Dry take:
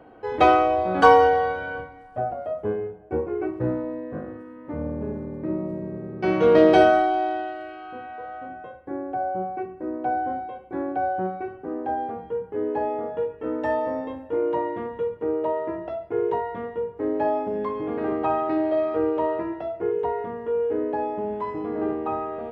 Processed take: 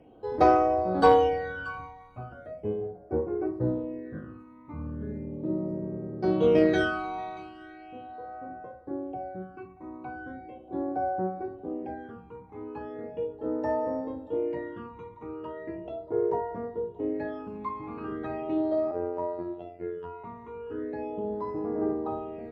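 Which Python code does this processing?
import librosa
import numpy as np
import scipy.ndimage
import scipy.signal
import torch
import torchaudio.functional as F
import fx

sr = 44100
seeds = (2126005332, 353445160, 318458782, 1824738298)

y = x + 10.0 ** (-18.5 / 20.0) * np.pad(x, (int(632 * sr / 1000.0), 0))[:len(x)]
y = fx.phaser_stages(y, sr, stages=12, low_hz=520.0, high_hz=3200.0, hz=0.38, feedback_pct=40)
y = fx.cheby_harmonics(y, sr, harmonics=(3,), levels_db=(-22,), full_scale_db=-5.0)
y = fx.robotise(y, sr, hz=87.5, at=(18.91, 20.24))
y = y * librosa.db_to_amplitude(-1.5)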